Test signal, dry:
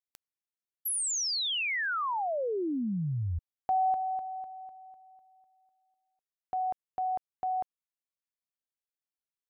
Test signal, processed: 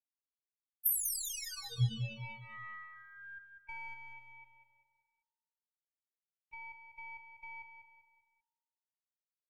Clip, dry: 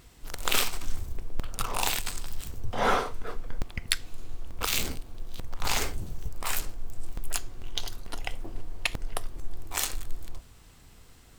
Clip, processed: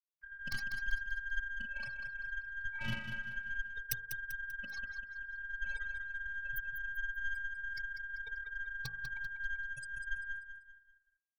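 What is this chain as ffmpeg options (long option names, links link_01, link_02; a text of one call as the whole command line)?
ffmpeg -i in.wav -filter_complex "[0:a]afftfilt=real='re*gte(hypot(re,im),0.1)':imag='im*gte(hypot(re,im),0.1)':win_size=1024:overlap=0.75,afftfilt=real='hypot(re,im)*cos(PI*b)':imag='0':win_size=512:overlap=0.75,asplit=2[link_01][link_02];[link_02]acompressor=threshold=-36dB:ratio=5:attack=22:release=119:knee=1:detection=peak,volume=3dB[link_03];[link_01][link_03]amix=inputs=2:normalize=0,aeval=exprs='val(0)*sin(2*PI*1600*n/s)':channel_layout=same,bandreject=frequency=51.86:width_type=h:width=4,bandreject=frequency=103.72:width_type=h:width=4,bandreject=frequency=155.58:width_type=h:width=4,bandreject=frequency=207.44:width_type=h:width=4,bandreject=frequency=259.3:width_type=h:width=4,bandreject=frequency=311.16:width_type=h:width=4,bandreject=frequency=363.02:width_type=h:width=4,bandreject=frequency=414.88:width_type=h:width=4,bandreject=frequency=466.74:width_type=h:width=4,bandreject=frequency=518.6:width_type=h:width=4,bandreject=frequency=570.46:width_type=h:width=4,bandreject=frequency=622.32:width_type=h:width=4,bandreject=frequency=674.18:width_type=h:width=4,bandreject=frequency=726.04:width_type=h:width=4,bandreject=frequency=777.9:width_type=h:width=4,bandreject=frequency=829.76:width_type=h:width=4,bandreject=frequency=881.62:width_type=h:width=4,bandreject=frequency=933.48:width_type=h:width=4,bandreject=frequency=985.34:width_type=h:width=4,bandreject=frequency=1037.2:width_type=h:width=4,bandreject=frequency=1089.06:width_type=h:width=4,bandreject=frequency=1140.92:width_type=h:width=4,bandreject=frequency=1192.78:width_type=h:width=4,bandreject=frequency=1244.64:width_type=h:width=4,bandreject=frequency=1296.5:width_type=h:width=4,bandreject=frequency=1348.36:width_type=h:width=4,bandreject=frequency=1400.22:width_type=h:width=4,bandreject=frequency=1452.08:width_type=h:width=4,bandreject=frequency=1503.94:width_type=h:width=4,bandreject=frequency=1555.8:width_type=h:width=4,bandreject=frequency=1607.66:width_type=h:width=4,bandreject=frequency=1659.52:width_type=h:width=4,acompressor=mode=upward:threshold=-46dB:ratio=2.5:attack=5.7:release=79:knee=2.83:detection=peak,aeval=exprs='0.355*(cos(1*acos(clip(val(0)/0.355,-1,1)))-cos(1*PI/2))+0.0708*(cos(4*acos(clip(val(0)/0.355,-1,1)))-cos(4*PI/2))+0.01*(cos(5*acos(clip(val(0)/0.355,-1,1)))-cos(5*PI/2))+0.0282*(cos(6*acos(clip(val(0)/0.355,-1,1)))-cos(6*PI/2))+0.00355*(cos(7*acos(clip(val(0)/0.355,-1,1)))-cos(7*PI/2))':channel_layout=same,firequalizer=gain_entry='entry(130,0);entry(200,-18);entry(560,-28);entry(2800,-22);entry(10000,-11);entry(15000,5)':delay=0.05:min_phase=1,asplit=2[link_04][link_05];[link_05]aecho=0:1:195|390|585|780:0.398|0.155|0.0606|0.0236[link_06];[link_04][link_06]amix=inputs=2:normalize=0,volume=6.5dB" out.wav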